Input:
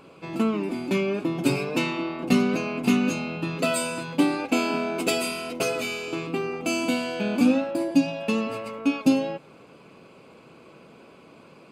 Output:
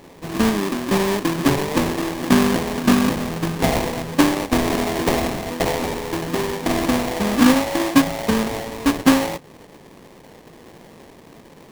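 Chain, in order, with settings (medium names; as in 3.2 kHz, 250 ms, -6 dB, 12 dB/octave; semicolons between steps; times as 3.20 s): sample-rate reducer 1.4 kHz, jitter 20%; trim +5.5 dB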